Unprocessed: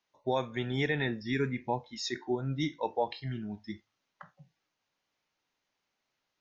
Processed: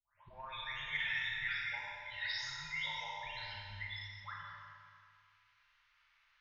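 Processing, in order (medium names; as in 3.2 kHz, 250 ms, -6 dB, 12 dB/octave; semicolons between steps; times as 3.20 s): delay that grows with frequency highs late, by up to 500 ms; Chebyshev band-stop 130–710 Hz, order 4; Chebyshev shaper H 3 -26 dB, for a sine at -22.5 dBFS; compression 3:1, threshold -57 dBFS, peak gain reduction 18.5 dB; level-controlled noise filter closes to 2.3 kHz, open at -38 dBFS; static phaser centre 310 Hz, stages 4; on a send: feedback echo behind a low-pass 110 ms, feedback 65%, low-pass 1.5 kHz, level -5 dB; on the sum: Schroeder reverb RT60 1.7 s, combs from 31 ms, DRR -1.5 dB; trim +17 dB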